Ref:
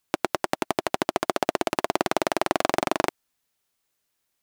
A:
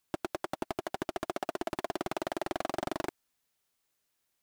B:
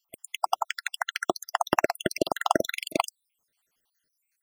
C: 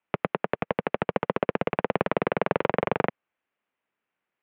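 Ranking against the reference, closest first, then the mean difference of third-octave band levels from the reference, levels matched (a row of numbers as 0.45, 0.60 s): A, C, B; 2.5, 11.0, 19.0 dB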